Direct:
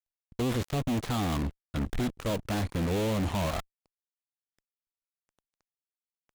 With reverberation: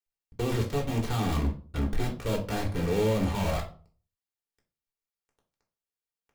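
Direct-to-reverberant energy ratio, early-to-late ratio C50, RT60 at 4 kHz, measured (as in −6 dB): −1.0 dB, 11.0 dB, 0.30 s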